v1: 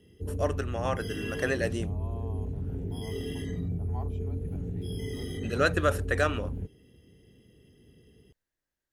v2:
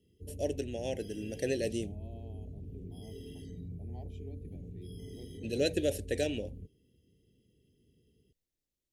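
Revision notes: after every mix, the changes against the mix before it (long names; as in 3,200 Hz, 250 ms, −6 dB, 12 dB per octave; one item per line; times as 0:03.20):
background −11.0 dB
master: add Butterworth band-reject 1,200 Hz, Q 0.55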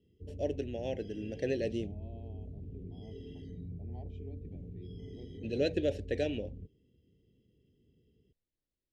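master: add high-frequency loss of the air 180 metres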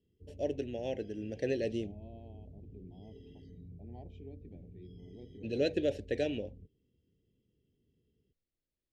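background −7.0 dB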